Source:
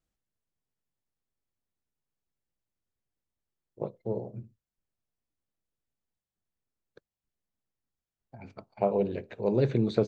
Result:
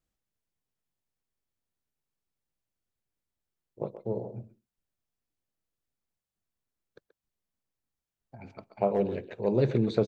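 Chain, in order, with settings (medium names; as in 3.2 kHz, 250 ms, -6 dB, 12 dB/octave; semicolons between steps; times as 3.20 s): speakerphone echo 130 ms, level -11 dB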